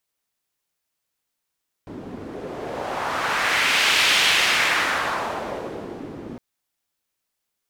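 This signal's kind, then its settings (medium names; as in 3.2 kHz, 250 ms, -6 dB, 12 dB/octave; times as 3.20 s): wind-like swept noise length 4.51 s, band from 280 Hz, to 2.8 kHz, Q 1.5, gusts 1, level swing 18 dB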